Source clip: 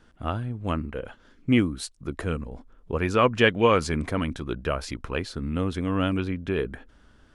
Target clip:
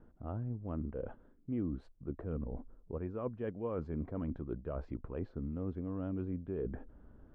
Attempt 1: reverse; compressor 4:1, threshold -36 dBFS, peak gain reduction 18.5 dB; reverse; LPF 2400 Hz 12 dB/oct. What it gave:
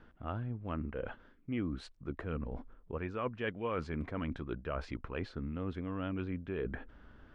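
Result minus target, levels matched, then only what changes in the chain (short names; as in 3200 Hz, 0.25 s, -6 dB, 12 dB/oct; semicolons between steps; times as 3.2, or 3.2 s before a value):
2000 Hz band +14.0 dB
change: LPF 700 Hz 12 dB/oct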